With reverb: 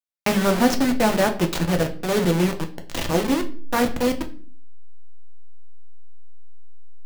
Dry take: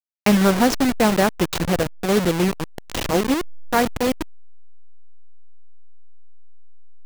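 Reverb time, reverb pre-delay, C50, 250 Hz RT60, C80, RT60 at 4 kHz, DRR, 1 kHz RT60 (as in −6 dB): 0.45 s, 3 ms, 13.5 dB, 0.65 s, 18.0 dB, 0.35 s, 4.5 dB, 0.40 s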